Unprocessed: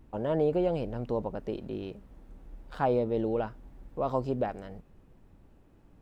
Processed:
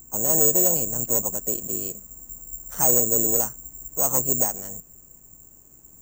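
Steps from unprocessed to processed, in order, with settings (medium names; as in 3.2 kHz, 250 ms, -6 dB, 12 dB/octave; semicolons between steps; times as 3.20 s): harmony voices +4 st -10 dB; one-sided clip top -22 dBFS, bottom -17.5 dBFS; careless resampling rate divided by 6×, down filtered, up zero stuff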